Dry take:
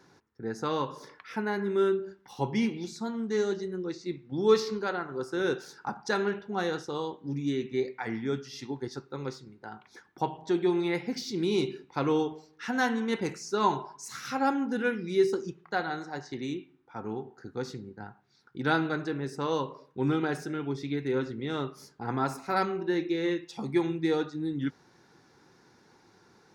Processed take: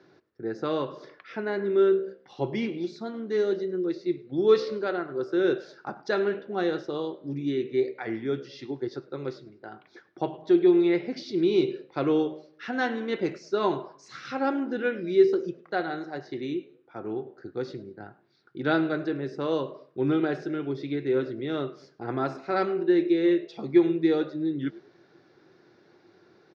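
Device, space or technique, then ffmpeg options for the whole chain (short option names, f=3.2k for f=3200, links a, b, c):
frequency-shifting delay pedal into a guitar cabinet: -filter_complex "[0:a]asplit=3[a][b][c];[b]adelay=103,afreqshift=69,volume=-23dB[d];[c]adelay=206,afreqshift=138,volume=-32.6dB[e];[a][d][e]amix=inputs=3:normalize=0,highpass=99,equalizer=f=220:t=q:w=4:g=-4,equalizer=f=350:t=q:w=4:g=8,equalizer=f=620:t=q:w=4:g=8,equalizer=f=910:t=q:w=4:g=-8,lowpass=f=4.6k:w=0.5412,lowpass=f=4.6k:w=1.3066"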